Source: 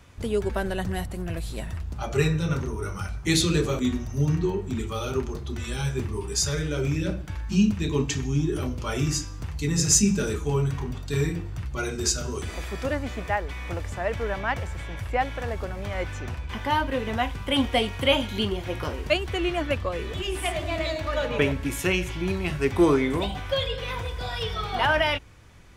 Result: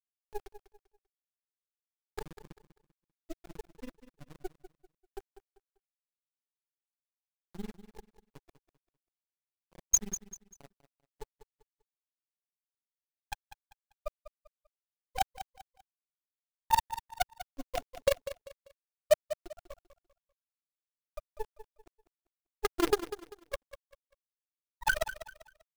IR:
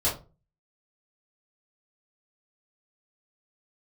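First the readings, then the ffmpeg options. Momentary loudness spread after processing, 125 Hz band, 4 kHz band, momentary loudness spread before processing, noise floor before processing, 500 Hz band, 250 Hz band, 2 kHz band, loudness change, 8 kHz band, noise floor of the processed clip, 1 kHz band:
22 LU, −29.5 dB, −17.0 dB, 10 LU, −36 dBFS, −11.0 dB, −20.5 dB, −12.0 dB, −8.0 dB, −8.5 dB, below −85 dBFS, −8.0 dB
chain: -filter_complex "[0:a]afftfilt=real='re*gte(hypot(re,im),0.794)':imag='im*gte(hypot(re,im),0.794)':win_size=1024:overlap=0.75,highpass=800,highshelf=frequency=2300:gain=7.5,acrossover=split=6500[link_01][link_02];[link_01]acrusher=bits=6:dc=4:mix=0:aa=0.000001[link_03];[link_03][link_02]amix=inputs=2:normalize=0,tremolo=f=21:d=0.947,volume=23.5dB,asoftclip=hard,volume=-23.5dB,aphaser=in_gain=1:out_gain=1:delay=2.1:decay=0.22:speed=0.78:type=sinusoidal,aecho=1:1:196|392|588:0.224|0.0694|0.0215,volume=8.5dB"

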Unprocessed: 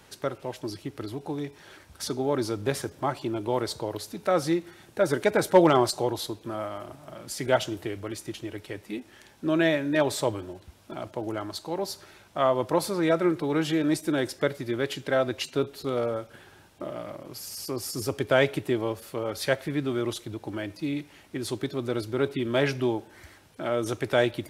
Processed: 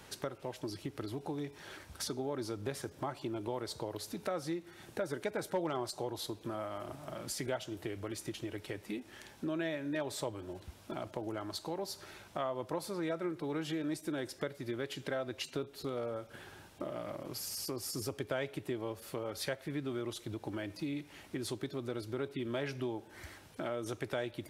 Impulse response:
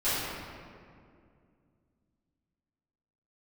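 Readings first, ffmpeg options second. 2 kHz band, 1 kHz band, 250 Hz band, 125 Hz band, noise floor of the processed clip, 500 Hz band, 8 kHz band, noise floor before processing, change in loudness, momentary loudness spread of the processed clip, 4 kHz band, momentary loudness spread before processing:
−12.0 dB, −12.5 dB, −10.5 dB, −10.0 dB, −57 dBFS, −12.0 dB, −7.0 dB, −55 dBFS, −11.5 dB, 7 LU, −9.0 dB, 14 LU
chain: -af "acompressor=threshold=-38dB:ratio=3"

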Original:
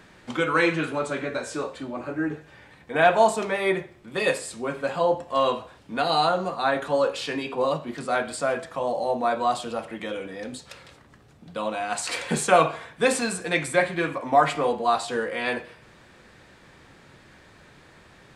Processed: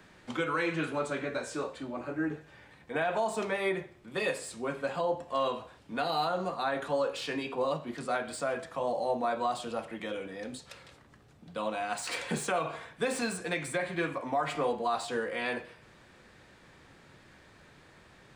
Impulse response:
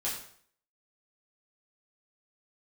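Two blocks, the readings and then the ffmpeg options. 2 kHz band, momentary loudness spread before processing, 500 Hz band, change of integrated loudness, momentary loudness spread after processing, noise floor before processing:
−8.0 dB, 12 LU, −8.0 dB, −8.0 dB, 8 LU, −53 dBFS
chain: -filter_complex "[0:a]acrossover=split=110|1200|3100[link_01][link_02][link_03][link_04];[link_04]asoftclip=type=tanh:threshold=-29dB[link_05];[link_01][link_02][link_03][link_05]amix=inputs=4:normalize=0,alimiter=limit=-15.5dB:level=0:latency=1:release=131,volume=-5dB"

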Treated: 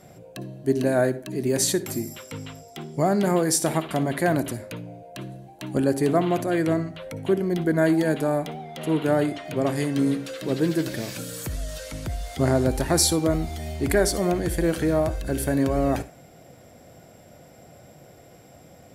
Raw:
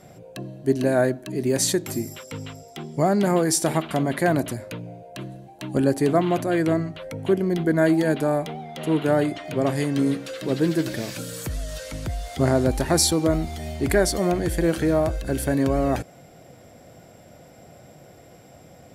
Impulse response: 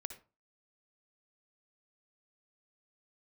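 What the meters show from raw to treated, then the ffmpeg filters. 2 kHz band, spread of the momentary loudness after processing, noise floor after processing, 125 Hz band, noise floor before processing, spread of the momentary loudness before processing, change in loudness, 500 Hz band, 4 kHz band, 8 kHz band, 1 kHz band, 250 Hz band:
−1.0 dB, 16 LU, −50 dBFS, −1.0 dB, −49 dBFS, 16 LU, −1.0 dB, −1.0 dB, −1.0 dB, 0.0 dB, −1.5 dB, −1.0 dB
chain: -filter_complex "[0:a]asplit=2[link_01][link_02];[1:a]atrim=start_sample=2205,highshelf=frequency=9400:gain=8[link_03];[link_02][link_03]afir=irnorm=-1:irlink=0,volume=0dB[link_04];[link_01][link_04]amix=inputs=2:normalize=0,volume=-6dB"

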